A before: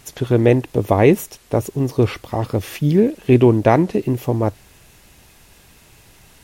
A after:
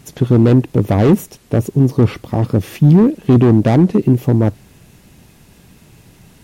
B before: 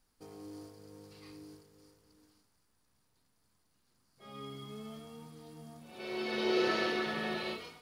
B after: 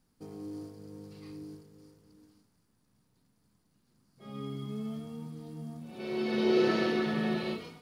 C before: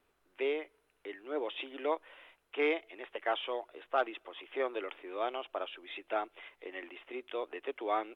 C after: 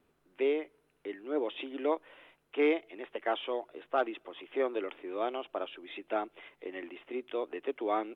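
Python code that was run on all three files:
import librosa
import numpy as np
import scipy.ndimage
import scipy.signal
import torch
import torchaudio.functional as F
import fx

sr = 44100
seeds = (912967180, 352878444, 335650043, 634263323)

y = np.clip(x, -10.0 ** (-13.5 / 20.0), 10.0 ** (-13.5 / 20.0))
y = fx.peak_eq(y, sr, hz=180.0, db=12.5, octaves=2.2)
y = F.gain(torch.from_numpy(y), -1.5).numpy()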